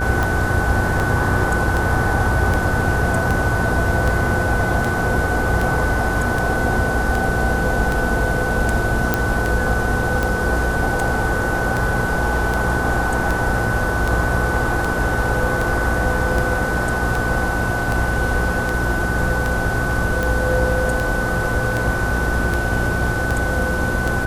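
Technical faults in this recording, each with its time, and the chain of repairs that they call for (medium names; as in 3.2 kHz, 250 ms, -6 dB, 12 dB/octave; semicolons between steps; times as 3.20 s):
buzz 60 Hz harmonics 13 -24 dBFS
tick 78 rpm
whine 1.5 kHz -23 dBFS
9.14 s: pop -3 dBFS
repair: de-click; de-hum 60 Hz, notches 13; band-stop 1.5 kHz, Q 30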